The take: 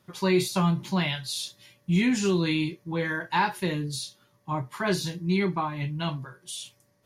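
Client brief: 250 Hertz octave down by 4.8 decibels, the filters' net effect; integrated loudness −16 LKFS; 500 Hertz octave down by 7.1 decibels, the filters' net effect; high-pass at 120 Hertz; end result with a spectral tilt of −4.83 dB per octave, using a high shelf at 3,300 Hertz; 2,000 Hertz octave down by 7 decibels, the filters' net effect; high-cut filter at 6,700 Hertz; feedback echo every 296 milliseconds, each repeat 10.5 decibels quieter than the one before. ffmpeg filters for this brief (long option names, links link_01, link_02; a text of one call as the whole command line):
ffmpeg -i in.wav -af "highpass=120,lowpass=6700,equalizer=frequency=250:width_type=o:gain=-4.5,equalizer=frequency=500:width_type=o:gain=-8,equalizer=frequency=2000:width_type=o:gain=-7.5,highshelf=frequency=3300:gain=-3,aecho=1:1:296|592|888:0.299|0.0896|0.0269,volume=16dB" out.wav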